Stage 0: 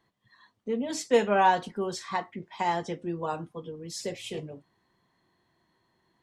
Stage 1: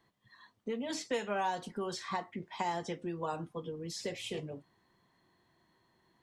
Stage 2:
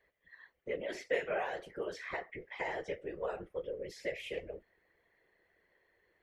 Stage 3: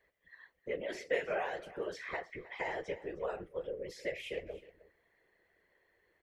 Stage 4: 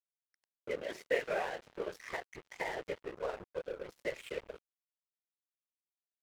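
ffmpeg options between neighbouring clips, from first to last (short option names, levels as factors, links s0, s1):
-filter_complex "[0:a]acrossover=split=910|4900[s0][s1][s2];[s0]acompressor=threshold=0.0158:ratio=4[s3];[s1]acompressor=threshold=0.01:ratio=4[s4];[s2]acompressor=threshold=0.00355:ratio=4[s5];[s3][s4][s5]amix=inputs=3:normalize=0"
-af "afftfilt=real='hypot(re,im)*cos(2*PI*random(0))':imag='hypot(re,im)*sin(2*PI*random(1))':win_size=512:overlap=0.75,equalizer=f=125:t=o:w=1:g=-9,equalizer=f=250:t=o:w=1:g=-12,equalizer=f=500:t=o:w=1:g=11,equalizer=f=1000:t=o:w=1:g=-12,equalizer=f=2000:t=o:w=1:g=12,equalizer=f=4000:t=o:w=1:g=-8,equalizer=f=8000:t=o:w=1:g=-11,volume=1.58"
-af "aecho=1:1:312:0.119"
-af "aeval=exprs='sgn(val(0))*max(abs(val(0))-0.00501,0)':c=same,volume=1.26"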